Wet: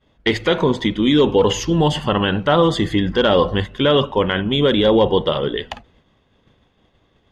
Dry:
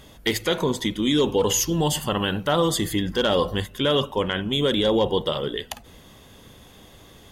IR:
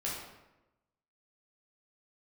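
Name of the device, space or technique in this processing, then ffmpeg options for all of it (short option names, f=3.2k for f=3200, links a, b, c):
hearing-loss simulation: -af "lowpass=3.2k,agate=range=-33dB:threshold=-37dB:ratio=3:detection=peak,volume=6.5dB"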